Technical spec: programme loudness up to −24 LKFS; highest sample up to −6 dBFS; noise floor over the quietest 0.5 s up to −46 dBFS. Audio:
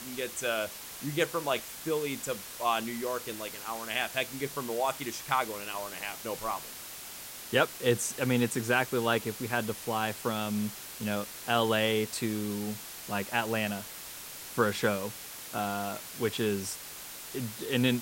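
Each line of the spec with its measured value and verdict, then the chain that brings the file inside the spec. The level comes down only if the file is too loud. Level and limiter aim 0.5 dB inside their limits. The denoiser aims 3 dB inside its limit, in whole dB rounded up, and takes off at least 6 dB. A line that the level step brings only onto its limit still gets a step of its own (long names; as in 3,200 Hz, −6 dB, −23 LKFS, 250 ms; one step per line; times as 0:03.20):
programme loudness −32.0 LKFS: in spec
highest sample −10.5 dBFS: in spec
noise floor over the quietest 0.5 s −44 dBFS: out of spec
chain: broadband denoise 6 dB, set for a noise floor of −44 dBFS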